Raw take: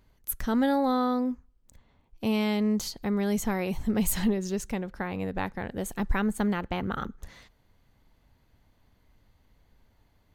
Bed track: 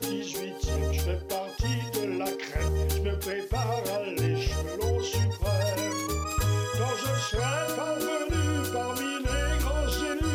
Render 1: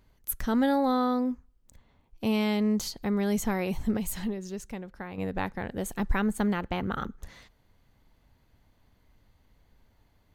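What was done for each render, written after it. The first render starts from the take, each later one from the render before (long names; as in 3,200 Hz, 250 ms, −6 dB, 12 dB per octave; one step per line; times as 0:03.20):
0:03.97–0:05.18: clip gain −6.5 dB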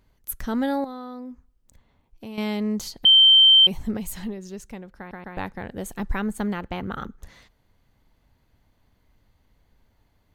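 0:00.84–0:02.38: downward compressor 2.5 to 1, threshold −39 dBFS
0:03.05–0:03.67: beep over 3,120 Hz −10 dBFS
0:04.98: stutter in place 0.13 s, 3 plays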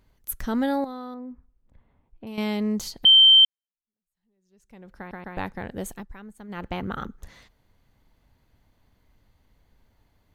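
0:01.14–0:02.27: high-frequency loss of the air 480 metres
0:03.45–0:04.91: fade in exponential
0:05.89–0:06.64: duck −16.5 dB, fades 0.16 s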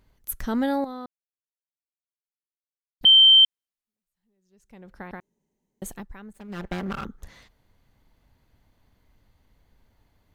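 0:01.06–0:03.01: silence
0:05.20–0:05.82: fill with room tone
0:06.33–0:07.04: lower of the sound and its delayed copy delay 5.1 ms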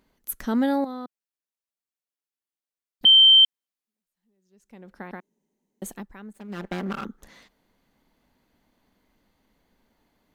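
low shelf with overshoot 150 Hz −10.5 dB, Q 1.5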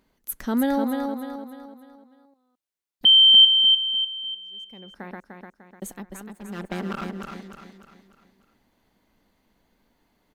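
repeating echo 299 ms, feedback 42%, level −5 dB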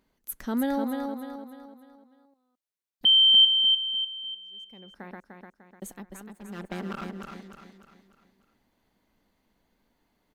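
level −4.5 dB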